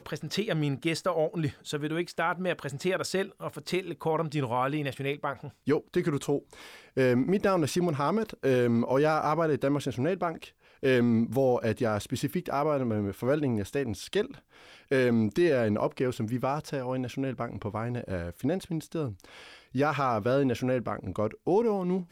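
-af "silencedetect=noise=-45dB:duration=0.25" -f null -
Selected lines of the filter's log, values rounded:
silence_start: 10.49
silence_end: 10.83 | silence_duration: 0.34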